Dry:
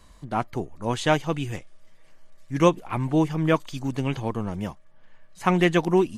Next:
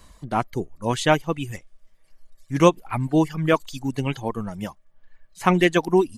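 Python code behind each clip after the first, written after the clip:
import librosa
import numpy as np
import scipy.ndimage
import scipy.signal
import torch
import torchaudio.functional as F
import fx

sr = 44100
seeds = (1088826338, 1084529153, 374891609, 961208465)

y = fx.dereverb_blind(x, sr, rt60_s=1.7)
y = fx.high_shelf(y, sr, hz=8800.0, db=5.5)
y = F.gain(torch.from_numpy(y), 3.0).numpy()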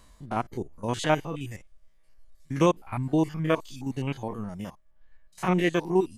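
y = fx.spec_steps(x, sr, hold_ms=50)
y = F.gain(torch.from_numpy(y), -4.0).numpy()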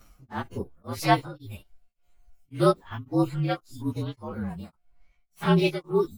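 y = fx.partial_stretch(x, sr, pct=114)
y = y * np.abs(np.cos(np.pi * 1.8 * np.arange(len(y)) / sr))
y = F.gain(torch.from_numpy(y), 4.5).numpy()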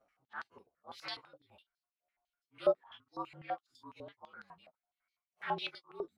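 y = fx.filter_held_bandpass(x, sr, hz=12.0, low_hz=620.0, high_hz=4500.0)
y = F.gain(torch.from_numpy(y), -2.0).numpy()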